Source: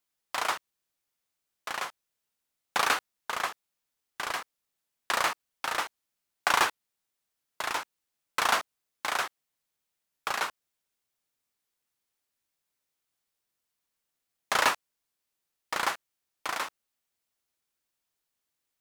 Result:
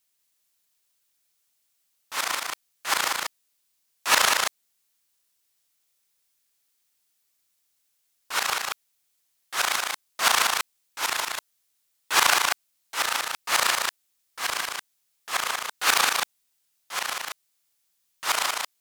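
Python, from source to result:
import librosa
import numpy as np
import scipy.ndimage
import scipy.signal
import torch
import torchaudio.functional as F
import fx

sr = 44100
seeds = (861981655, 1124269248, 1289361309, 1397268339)

p1 = x[::-1].copy()
p2 = fx.high_shelf(p1, sr, hz=2300.0, db=11.0)
y = p2 + fx.echo_single(p2, sr, ms=188, db=-4.0, dry=0)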